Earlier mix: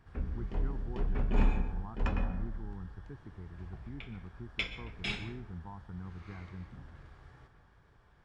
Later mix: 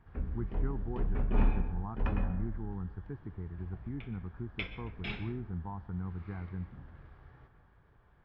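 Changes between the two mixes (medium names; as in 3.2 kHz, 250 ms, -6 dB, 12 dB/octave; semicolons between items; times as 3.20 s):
speech +6.0 dB; master: add distance through air 300 m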